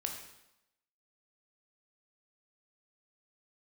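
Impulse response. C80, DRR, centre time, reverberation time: 7.5 dB, 2.0 dB, 32 ms, 0.85 s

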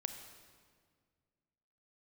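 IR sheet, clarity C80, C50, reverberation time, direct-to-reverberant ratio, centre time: 8.5 dB, 7.5 dB, 1.9 s, 6.5 dB, 28 ms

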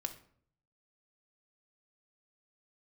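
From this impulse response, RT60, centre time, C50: 0.55 s, 8 ms, 12.0 dB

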